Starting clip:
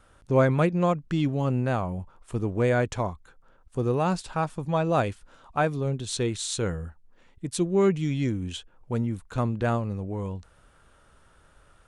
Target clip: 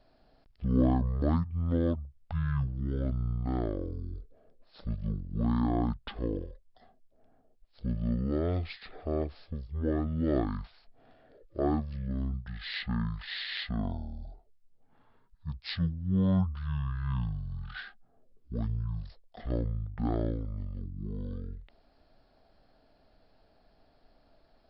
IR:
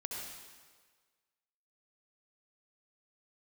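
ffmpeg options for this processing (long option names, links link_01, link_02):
-af "asetrate=21212,aresample=44100,volume=-5.5dB"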